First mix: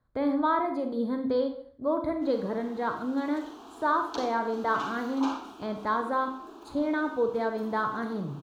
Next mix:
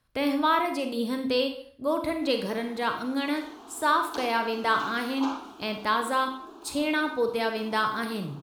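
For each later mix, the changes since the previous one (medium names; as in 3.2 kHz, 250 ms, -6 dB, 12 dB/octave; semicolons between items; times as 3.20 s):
speech: remove boxcar filter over 16 samples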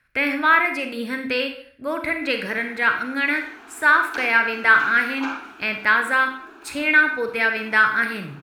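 master: add high-order bell 1.9 kHz +15.5 dB 1.1 oct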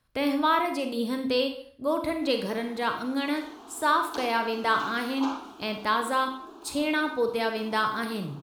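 master: add high-order bell 1.9 kHz -15.5 dB 1.1 oct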